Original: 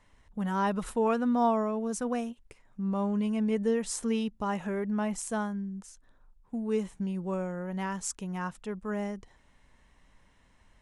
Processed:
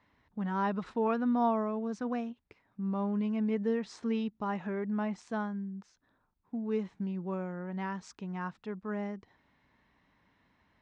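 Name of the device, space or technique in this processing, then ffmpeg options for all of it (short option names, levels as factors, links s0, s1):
guitar cabinet: -af "highpass=100,equalizer=f=290:t=q:w=4:g=3,equalizer=f=530:t=q:w=4:g=-4,equalizer=f=3000:t=q:w=4:g=-5,lowpass=f=4500:w=0.5412,lowpass=f=4500:w=1.3066,volume=0.75"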